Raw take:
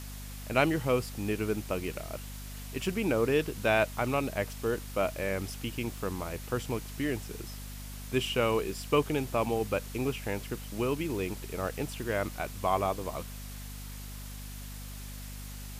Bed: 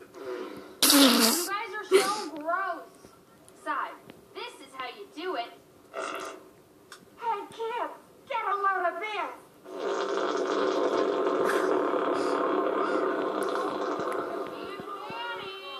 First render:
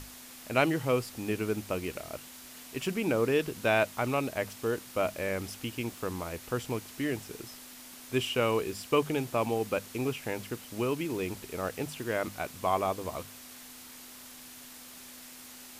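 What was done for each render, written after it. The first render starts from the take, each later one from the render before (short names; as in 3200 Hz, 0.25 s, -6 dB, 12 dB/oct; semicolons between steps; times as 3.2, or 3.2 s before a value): notches 50/100/150/200 Hz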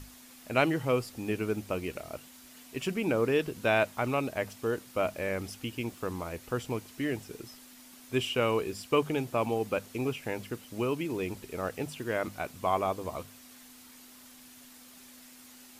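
denoiser 6 dB, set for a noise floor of -49 dBFS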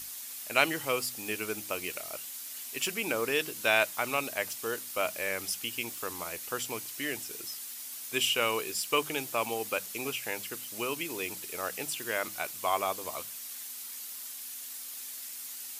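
tilt +4 dB/oct; de-hum 62.22 Hz, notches 5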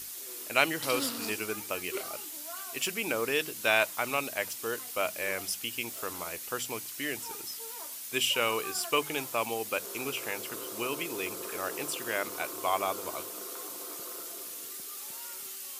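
add bed -17 dB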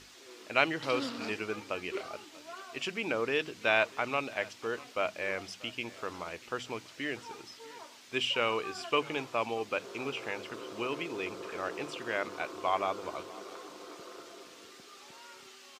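air absorption 160 m; echo 0.639 s -21 dB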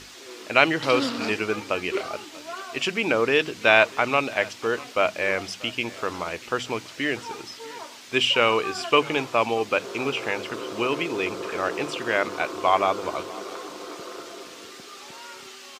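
gain +10 dB; limiter -1 dBFS, peak gain reduction 2 dB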